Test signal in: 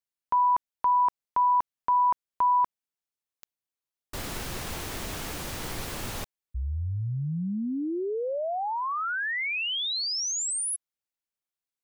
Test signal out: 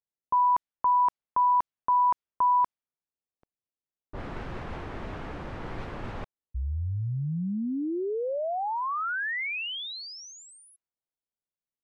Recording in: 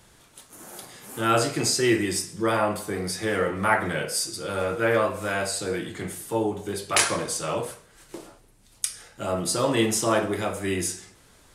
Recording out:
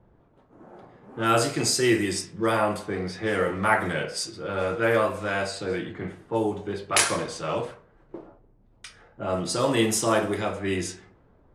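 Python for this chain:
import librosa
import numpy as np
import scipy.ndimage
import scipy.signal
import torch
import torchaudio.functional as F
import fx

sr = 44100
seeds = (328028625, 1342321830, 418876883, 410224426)

y = fx.env_lowpass(x, sr, base_hz=680.0, full_db=-20.0)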